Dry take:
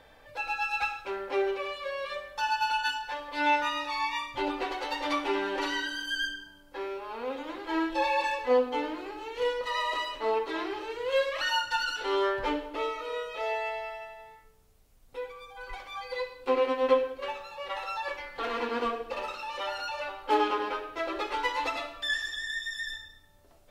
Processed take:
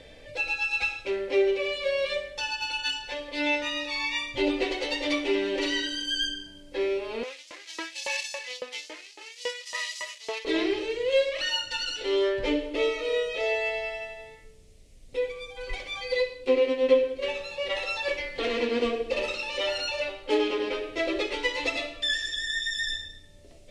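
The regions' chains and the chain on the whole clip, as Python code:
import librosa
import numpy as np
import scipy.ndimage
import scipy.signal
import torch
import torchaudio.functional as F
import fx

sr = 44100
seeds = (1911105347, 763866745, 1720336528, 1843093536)

y = fx.chain(x, sr, fx.median_filter(points=15),
    fx.filter_lfo_highpass(shape='saw_up', hz=3.6, low_hz=920.0, high_hz=6200.0, q=1.0), at=(7.23, 10.45))
y = fx.rider(y, sr, range_db=3, speed_s=0.5)
y = scipy.signal.sosfilt(scipy.signal.butter(4, 9500.0, 'lowpass', fs=sr, output='sos'), y)
y = fx.band_shelf(y, sr, hz=1100.0, db=-14.0, octaves=1.3)
y = y * librosa.db_to_amplitude(6.5)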